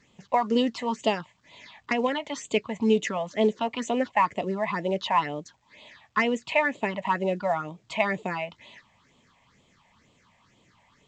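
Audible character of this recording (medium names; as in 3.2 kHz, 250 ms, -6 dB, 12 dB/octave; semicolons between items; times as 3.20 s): phasing stages 6, 2.1 Hz, lowest notch 350–1600 Hz; A-law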